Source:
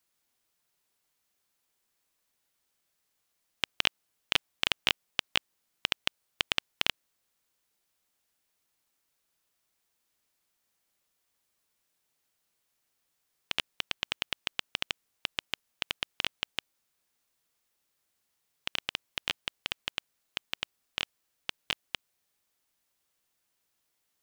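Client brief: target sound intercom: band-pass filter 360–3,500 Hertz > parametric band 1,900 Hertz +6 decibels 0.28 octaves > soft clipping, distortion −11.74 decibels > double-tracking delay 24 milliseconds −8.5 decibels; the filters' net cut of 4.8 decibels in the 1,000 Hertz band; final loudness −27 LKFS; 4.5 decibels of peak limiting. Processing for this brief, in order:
parametric band 1,000 Hz −6.5 dB
brickwall limiter −10 dBFS
band-pass filter 360–3,500 Hz
parametric band 1,900 Hz +6 dB 0.28 octaves
soft clipping −19 dBFS
double-tracking delay 24 ms −8.5 dB
level +14 dB

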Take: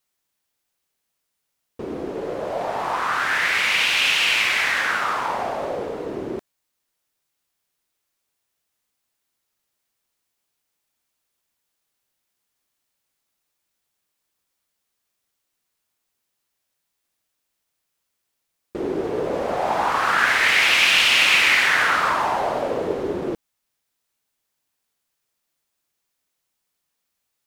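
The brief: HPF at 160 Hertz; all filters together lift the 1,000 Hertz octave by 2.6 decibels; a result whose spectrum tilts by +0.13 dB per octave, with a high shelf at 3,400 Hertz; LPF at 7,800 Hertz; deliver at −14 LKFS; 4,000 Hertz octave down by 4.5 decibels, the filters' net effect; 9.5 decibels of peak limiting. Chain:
high-pass filter 160 Hz
low-pass filter 7,800 Hz
parametric band 1,000 Hz +4 dB
high-shelf EQ 3,400 Hz −4 dB
parametric band 4,000 Hz −4 dB
level +9 dB
brickwall limiter −5 dBFS

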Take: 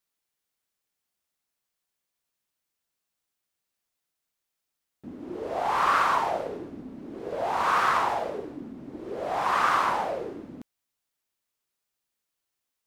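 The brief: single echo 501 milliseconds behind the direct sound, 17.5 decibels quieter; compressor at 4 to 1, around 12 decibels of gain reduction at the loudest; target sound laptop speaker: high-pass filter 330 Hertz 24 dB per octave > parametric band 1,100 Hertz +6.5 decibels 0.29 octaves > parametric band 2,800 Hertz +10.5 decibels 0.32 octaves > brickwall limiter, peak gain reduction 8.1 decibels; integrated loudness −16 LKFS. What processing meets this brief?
downward compressor 4 to 1, threshold −34 dBFS
high-pass filter 330 Hz 24 dB per octave
parametric band 1,100 Hz +6.5 dB 0.29 octaves
parametric band 2,800 Hz +10.5 dB 0.32 octaves
single-tap delay 501 ms −17.5 dB
level +21.5 dB
brickwall limiter −6 dBFS

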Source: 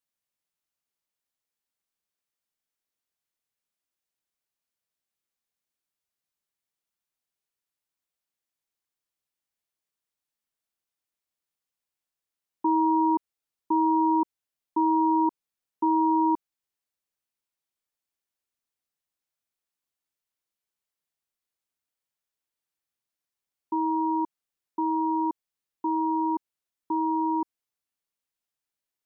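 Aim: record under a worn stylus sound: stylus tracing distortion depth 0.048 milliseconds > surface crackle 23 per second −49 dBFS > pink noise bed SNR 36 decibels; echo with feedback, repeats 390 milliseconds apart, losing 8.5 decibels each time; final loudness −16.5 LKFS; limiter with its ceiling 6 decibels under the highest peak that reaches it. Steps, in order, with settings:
brickwall limiter −22 dBFS
repeating echo 390 ms, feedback 38%, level −8.5 dB
stylus tracing distortion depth 0.048 ms
surface crackle 23 per second −49 dBFS
pink noise bed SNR 36 dB
level +14.5 dB

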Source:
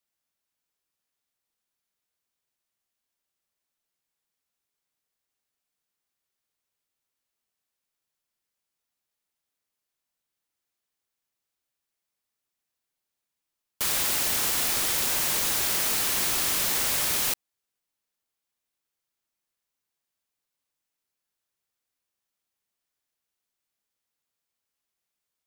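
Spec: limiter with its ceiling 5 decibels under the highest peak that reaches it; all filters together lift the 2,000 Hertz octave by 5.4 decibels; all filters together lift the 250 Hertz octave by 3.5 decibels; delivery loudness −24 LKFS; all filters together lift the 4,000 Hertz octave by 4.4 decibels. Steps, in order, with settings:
parametric band 250 Hz +4.5 dB
parametric band 2,000 Hz +5.5 dB
parametric band 4,000 Hz +4 dB
level −1 dB
brickwall limiter −16.5 dBFS

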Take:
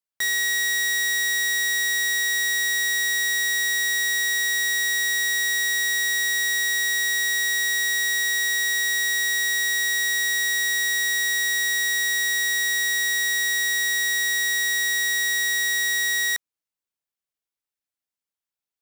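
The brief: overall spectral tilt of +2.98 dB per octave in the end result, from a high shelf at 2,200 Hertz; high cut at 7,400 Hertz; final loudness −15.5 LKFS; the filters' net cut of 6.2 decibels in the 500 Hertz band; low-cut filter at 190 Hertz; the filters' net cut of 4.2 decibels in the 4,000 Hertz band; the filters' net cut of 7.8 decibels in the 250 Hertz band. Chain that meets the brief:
high-pass filter 190 Hz
low-pass filter 7,400 Hz
parametric band 250 Hz −8 dB
parametric band 500 Hz −5 dB
high-shelf EQ 2,200 Hz +4.5 dB
parametric band 4,000 Hz −8 dB
level +6 dB

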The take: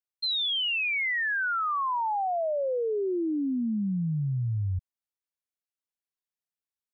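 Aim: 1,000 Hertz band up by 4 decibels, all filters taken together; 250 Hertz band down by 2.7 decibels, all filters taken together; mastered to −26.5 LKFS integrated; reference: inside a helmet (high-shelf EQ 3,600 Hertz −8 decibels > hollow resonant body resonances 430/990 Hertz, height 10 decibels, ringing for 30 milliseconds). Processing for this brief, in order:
parametric band 250 Hz −4 dB
parametric band 1,000 Hz +6 dB
high-shelf EQ 3,600 Hz −8 dB
hollow resonant body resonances 430/990 Hz, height 10 dB, ringing for 30 ms
level −2.5 dB

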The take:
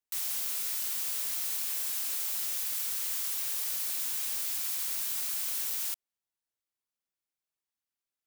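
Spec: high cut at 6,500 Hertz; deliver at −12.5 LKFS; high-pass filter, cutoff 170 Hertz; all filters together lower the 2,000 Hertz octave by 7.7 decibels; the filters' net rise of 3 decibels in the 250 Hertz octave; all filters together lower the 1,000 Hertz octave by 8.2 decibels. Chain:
high-pass filter 170 Hz
low-pass filter 6,500 Hz
parametric band 250 Hz +5.5 dB
parametric band 1,000 Hz −8.5 dB
parametric band 2,000 Hz −8 dB
level +28.5 dB

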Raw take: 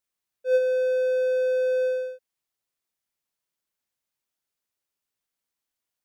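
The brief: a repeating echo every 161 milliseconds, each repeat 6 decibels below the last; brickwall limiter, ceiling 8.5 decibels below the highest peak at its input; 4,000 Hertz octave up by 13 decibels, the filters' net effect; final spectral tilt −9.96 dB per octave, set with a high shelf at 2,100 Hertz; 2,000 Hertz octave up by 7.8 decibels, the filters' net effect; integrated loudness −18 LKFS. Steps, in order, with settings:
parametric band 2,000 Hz +7.5 dB
high-shelf EQ 2,100 Hz +5 dB
parametric band 4,000 Hz +8.5 dB
brickwall limiter −19 dBFS
repeating echo 161 ms, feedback 50%, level −6 dB
level +9 dB

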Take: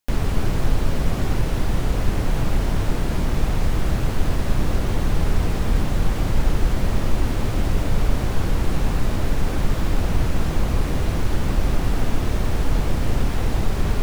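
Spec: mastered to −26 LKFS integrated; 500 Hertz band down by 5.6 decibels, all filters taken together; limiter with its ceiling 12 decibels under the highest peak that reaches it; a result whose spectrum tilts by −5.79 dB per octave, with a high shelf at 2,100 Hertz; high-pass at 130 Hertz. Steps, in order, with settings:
high-pass filter 130 Hz
parametric band 500 Hz −7 dB
high-shelf EQ 2,100 Hz −5.5 dB
level +9.5 dB
brickwall limiter −17.5 dBFS

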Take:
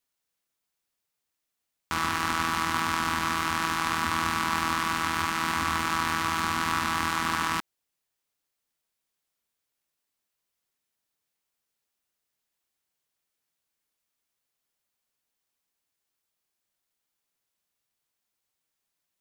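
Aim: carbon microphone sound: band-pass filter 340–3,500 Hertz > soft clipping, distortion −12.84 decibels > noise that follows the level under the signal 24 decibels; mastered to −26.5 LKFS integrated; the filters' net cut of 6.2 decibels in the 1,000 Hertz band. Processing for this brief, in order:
band-pass filter 340–3,500 Hz
parametric band 1,000 Hz −7.5 dB
soft clipping −23.5 dBFS
noise that follows the level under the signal 24 dB
level +7.5 dB

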